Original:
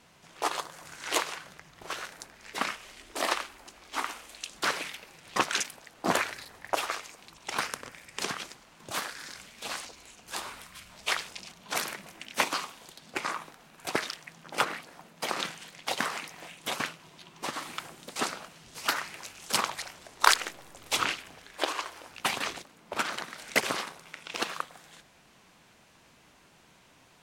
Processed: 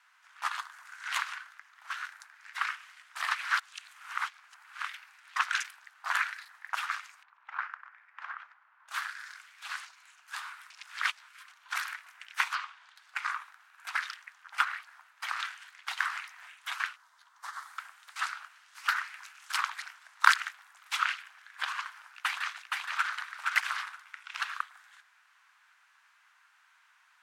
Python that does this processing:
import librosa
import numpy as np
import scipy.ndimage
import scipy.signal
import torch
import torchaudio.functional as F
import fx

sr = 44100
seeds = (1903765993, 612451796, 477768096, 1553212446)

y = fx.lowpass(x, sr, hz=1400.0, slope=12, at=(7.23, 8.88))
y = fx.lowpass(y, sr, hz=4500.0, slope=12, at=(12.55, 12.96))
y = fx.peak_eq(y, sr, hz=2600.0, db=-14.0, octaves=0.81, at=(16.96, 17.79))
y = fx.echo_throw(y, sr, start_s=22.14, length_s=0.94, ms=470, feedback_pct=15, wet_db=-2.5)
y = fx.edit(y, sr, fx.reverse_span(start_s=3.35, length_s=1.52),
    fx.reverse_span(start_s=10.7, length_s=0.78), tone=tone)
y = fx.dynamic_eq(y, sr, hz=3300.0, q=0.84, threshold_db=-42.0, ratio=4.0, max_db=3)
y = scipy.signal.sosfilt(scipy.signal.cheby2(4, 40, 460.0, 'highpass', fs=sr, output='sos'), y)
y = fx.peak_eq(y, sr, hz=1500.0, db=14.0, octaves=1.2)
y = F.gain(torch.from_numpy(y), -11.0).numpy()